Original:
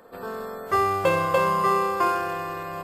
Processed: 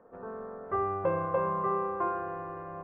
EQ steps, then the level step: Bessel low-pass 1.1 kHz, order 4; -6.0 dB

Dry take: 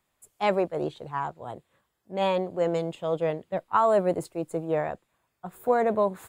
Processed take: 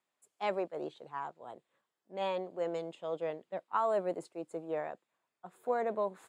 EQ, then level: high-pass 250 Hz 12 dB/octave; low-pass 8.6 kHz 12 dB/octave; -9.0 dB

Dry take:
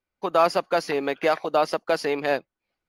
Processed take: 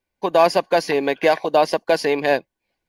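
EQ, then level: Butterworth band-stop 1.3 kHz, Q 4.3; +5.5 dB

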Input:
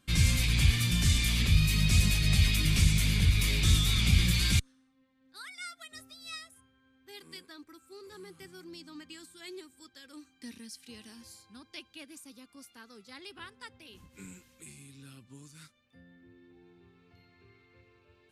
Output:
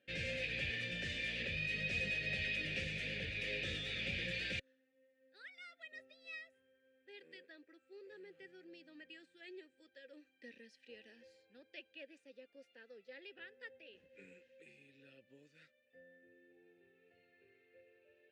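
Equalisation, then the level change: vowel filter e; distance through air 67 m; +7.0 dB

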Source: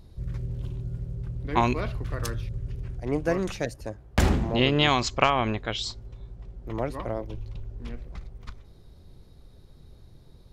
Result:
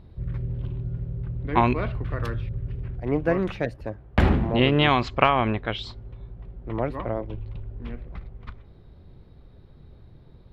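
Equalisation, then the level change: distance through air 490 m; tilt EQ +2.5 dB/octave; bass shelf 270 Hz +8 dB; +4.5 dB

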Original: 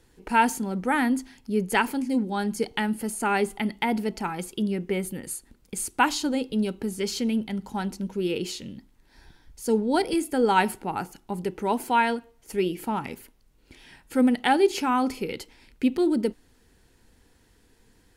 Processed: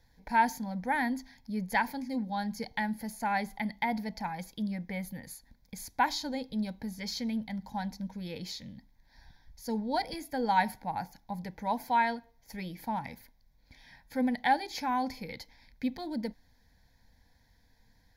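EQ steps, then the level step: static phaser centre 1.9 kHz, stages 8; -3.0 dB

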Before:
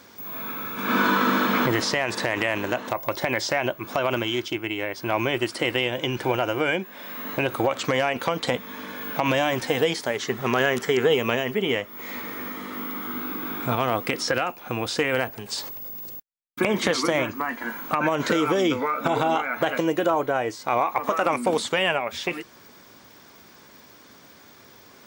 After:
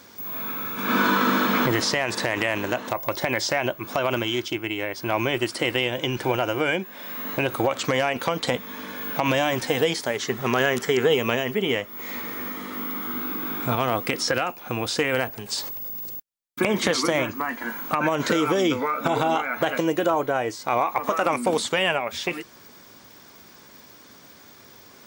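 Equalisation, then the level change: tone controls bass +1 dB, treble +3 dB; 0.0 dB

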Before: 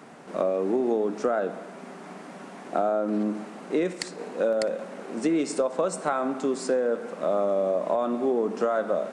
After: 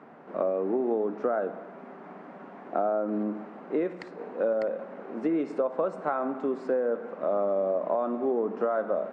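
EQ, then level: low-pass 1.6 kHz 12 dB/octave; bass shelf 160 Hz -6.5 dB; hum notches 60/120/180 Hz; -1.5 dB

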